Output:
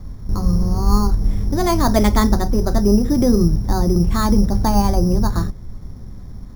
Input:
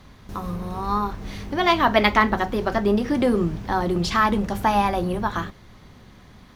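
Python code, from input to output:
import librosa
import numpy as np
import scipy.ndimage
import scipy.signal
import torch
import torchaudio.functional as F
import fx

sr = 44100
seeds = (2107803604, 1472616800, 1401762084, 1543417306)

p1 = fx.tilt_eq(x, sr, slope=-4.5)
p2 = fx.rider(p1, sr, range_db=4, speed_s=2.0)
p3 = p1 + (p2 * librosa.db_to_amplitude(0.5))
p4 = np.repeat(scipy.signal.resample_poly(p3, 1, 8), 8)[:len(p3)]
y = p4 * librosa.db_to_amplitude(-9.0)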